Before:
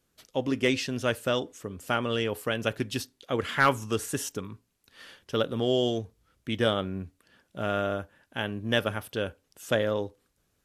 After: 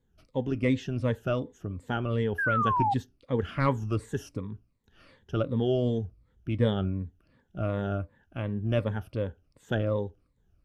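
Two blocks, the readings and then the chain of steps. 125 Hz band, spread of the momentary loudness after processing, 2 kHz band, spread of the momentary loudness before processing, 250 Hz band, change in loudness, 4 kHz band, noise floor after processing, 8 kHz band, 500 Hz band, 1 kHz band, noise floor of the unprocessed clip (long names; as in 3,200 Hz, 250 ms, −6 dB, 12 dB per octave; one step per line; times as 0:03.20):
+6.0 dB, 12 LU, −4.0 dB, 14 LU, +1.0 dB, −0.5 dB, −11.5 dB, −71 dBFS, below −15 dB, −2.5 dB, +1.0 dB, −74 dBFS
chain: rippled gain that drifts along the octave scale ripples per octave 1, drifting −2.7 Hz, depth 12 dB
sound drawn into the spectrogram fall, 0:02.38–0:02.94, 770–1,700 Hz −19 dBFS
RIAA equalisation playback
level −7 dB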